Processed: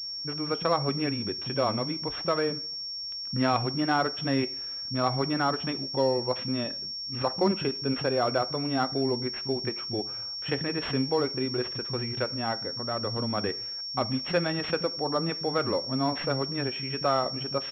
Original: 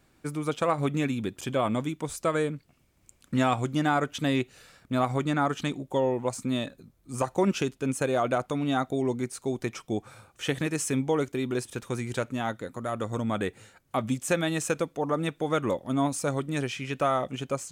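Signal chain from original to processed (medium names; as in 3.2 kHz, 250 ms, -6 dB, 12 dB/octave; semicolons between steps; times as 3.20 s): bands offset in time lows, highs 30 ms, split 210 Hz; two-slope reverb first 0.52 s, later 2.2 s, from -27 dB, DRR 14 dB; class-D stage that switches slowly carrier 5.5 kHz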